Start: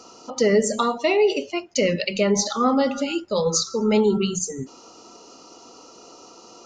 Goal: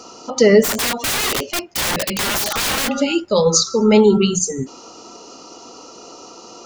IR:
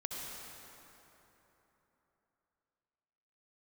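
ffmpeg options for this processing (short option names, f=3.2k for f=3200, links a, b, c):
-filter_complex "[0:a]asplit=3[a][b][c];[a]afade=t=out:st=0.63:d=0.02[d];[b]aeval=exprs='(mod(12.6*val(0)+1,2)-1)/12.6':c=same,afade=t=in:st=0.63:d=0.02,afade=t=out:st=2.87:d=0.02[e];[c]afade=t=in:st=2.87:d=0.02[f];[d][e][f]amix=inputs=3:normalize=0,volume=7dB"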